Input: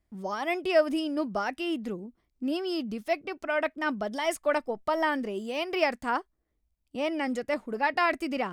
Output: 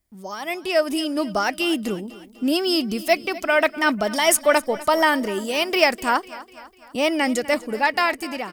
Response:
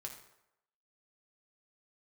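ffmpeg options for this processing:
-filter_complex "[0:a]dynaudnorm=f=170:g=11:m=10dB,tiltshelf=f=1.4k:g=4,crystalizer=i=8:c=0,asplit=2[a][b];[b]aecho=0:1:249|498|747|996:0.126|0.0655|0.034|0.0177[c];[a][c]amix=inputs=2:normalize=0,volume=-5.5dB"

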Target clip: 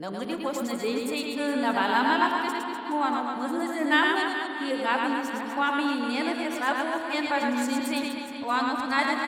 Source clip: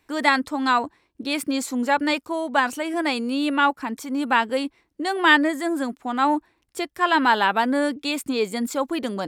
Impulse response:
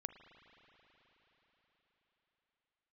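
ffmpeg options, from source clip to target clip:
-filter_complex "[0:a]areverse,aecho=1:1:110|247.5|419.4|634.2|902.8:0.631|0.398|0.251|0.158|0.1[a];[1:a]atrim=start_sample=2205,asetrate=57330,aresample=44100[b];[a][b]afir=irnorm=-1:irlink=0"

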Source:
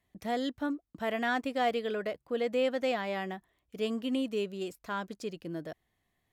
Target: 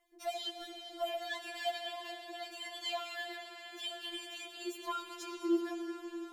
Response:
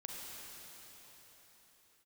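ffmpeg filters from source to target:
-filter_complex "[0:a]acrossover=split=230|3000[a][b][c];[b]acompressor=threshold=-40dB:ratio=6[d];[a][d][c]amix=inputs=3:normalize=0,asplit=2[e][f];[1:a]atrim=start_sample=2205,asetrate=29106,aresample=44100[g];[f][g]afir=irnorm=-1:irlink=0,volume=-1dB[h];[e][h]amix=inputs=2:normalize=0,afftfilt=real='re*4*eq(mod(b,16),0)':imag='im*4*eq(mod(b,16),0)':win_size=2048:overlap=0.75,volume=1dB"

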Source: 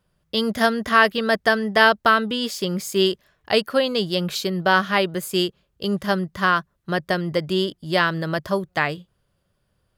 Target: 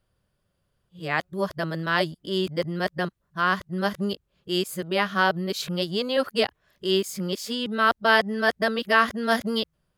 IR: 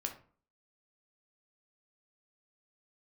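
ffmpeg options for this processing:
-af "areverse,volume=-4dB"

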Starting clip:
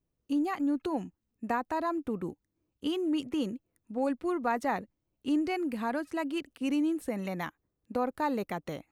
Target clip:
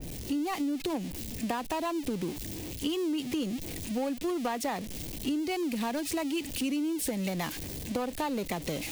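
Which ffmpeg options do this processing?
-filter_complex "[0:a]aeval=exprs='val(0)+0.5*0.0158*sgn(val(0))':c=same,bandreject=f=1.4k:w=23,acrossover=split=300|1700[a][b][c];[b]adynamicsmooth=sensitivity=2:basefreq=540[d];[a][d][c]amix=inputs=3:normalize=0,bandreject=f=60:t=h:w=6,bandreject=f=120:t=h:w=6,acompressor=threshold=-33dB:ratio=6,adynamicequalizer=threshold=0.002:dfrequency=2000:dqfactor=0.7:tfrequency=2000:tqfactor=0.7:attack=5:release=100:ratio=0.375:range=2.5:mode=boostabove:tftype=highshelf,volume=4.5dB"

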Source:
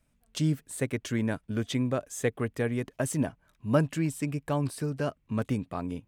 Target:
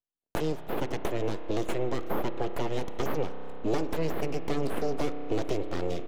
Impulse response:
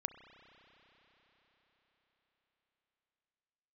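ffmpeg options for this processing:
-filter_complex "[0:a]aexciter=amount=10:drive=3.7:freq=2.7k,aresample=16000,asoftclip=type=hard:threshold=-15.5dB,aresample=44100,agate=range=-41dB:threshold=-52dB:ratio=16:detection=peak,aeval=exprs='abs(val(0))':c=same,acrossover=split=240|3600[a][b][c];[a]acompressor=threshold=-39dB:ratio=4[d];[b]acompressor=threshold=-44dB:ratio=4[e];[c]acompressor=threshold=-46dB:ratio=4[f];[d][e][f]amix=inputs=3:normalize=0,asplit=2[g][h];[h]equalizer=f=430:w=0.5:g=14[i];[1:a]atrim=start_sample=2205,lowpass=8.1k,highshelf=f=3.8k:g=-9[j];[i][j]afir=irnorm=-1:irlink=0,volume=7.5dB[k];[g][k]amix=inputs=2:normalize=0,volume=-4.5dB"

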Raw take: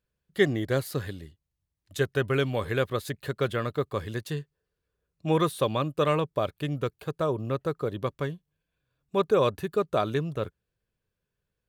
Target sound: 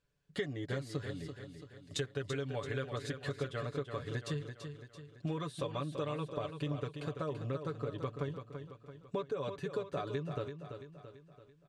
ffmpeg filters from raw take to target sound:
-filter_complex "[0:a]lowpass=f=8.3k:w=0.5412,lowpass=f=8.3k:w=1.3066,aecho=1:1:7:0.71,acompressor=threshold=-36dB:ratio=8,asplit=2[a][b];[b]aecho=0:1:336|672|1008|1344|1680|2016:0.398|0.195|0.0956|0.0468|0.023|0.0112[c];[a][c]amix=inputs=2:normalize=0,volume=1dB"

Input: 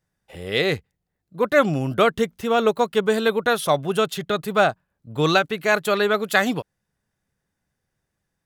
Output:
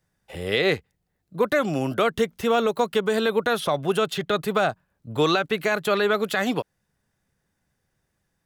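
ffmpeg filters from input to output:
-filter_complex "[0:a]acrossover=split=260|4400[a][b][c];[a]acompressor=threshold=-36dB:ratio=4[d];[b]acompressor=threshold=-20dB:ratio=4[e];[c]acompressor=threshold=-43dB:ratio=4[f];[d][e][f]amix=inputs=3:normalize=0,alimiter=limit=-14.5dB:level=0:latency=1:release=67,volume=3.5dB"

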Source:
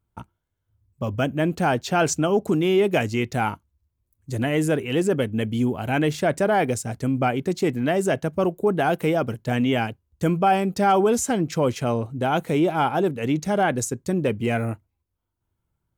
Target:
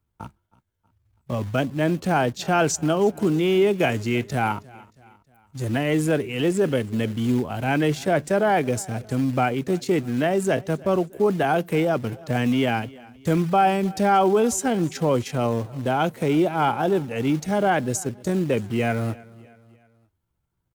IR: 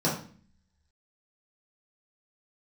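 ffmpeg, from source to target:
-filter_complex "[0:a]acrossover=split=270|670|5400[a][b][c][d];[a]acrusher=bits=4:mode=log:mix=0:aa=0.000001[e];[e][b][c][d]amix=inputs=4:normalize=0,aecho=1:1:243|486|729:0.075|0.036|0.0173,atempo=0.77"

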